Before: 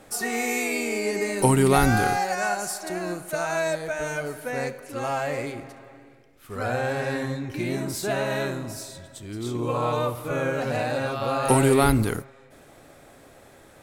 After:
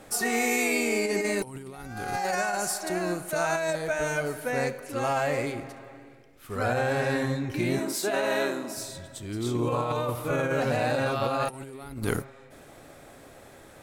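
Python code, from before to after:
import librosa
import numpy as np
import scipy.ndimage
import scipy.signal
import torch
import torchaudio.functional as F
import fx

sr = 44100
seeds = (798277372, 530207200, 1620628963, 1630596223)

y = fx.highpass(x, sr, hz=230.0, slope=24, at=(7.79, 8.77))
y = fx.over_compress(y, sr, threshold_db=-26.0, ratio=-0.5)
y = y * librosa.db_to_amplitude(-1.0)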